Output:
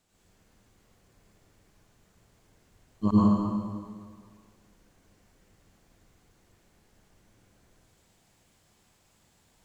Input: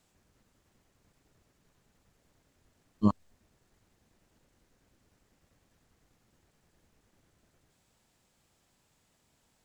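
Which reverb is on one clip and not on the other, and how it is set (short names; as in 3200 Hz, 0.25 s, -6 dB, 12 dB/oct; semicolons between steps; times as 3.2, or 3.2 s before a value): plate-style reverb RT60 1.9 s, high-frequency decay 0.9×, pre-delay 80 ms, DRR -8 dB; gain -2.5 dB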